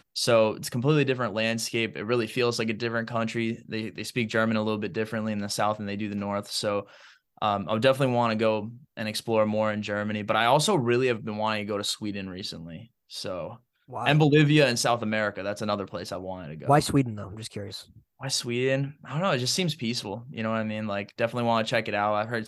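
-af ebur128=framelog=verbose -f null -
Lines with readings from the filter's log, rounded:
Integrated loudness:
  I:         -26.4 LUFS
  Threshold: -36.8 LUFS
Loudness range:
  LRA:         3.9 LU
  Threshold: -47.0 LUFS
  LRA low:   -28.8 LUFS
  LRA high:  -24.9 LUFS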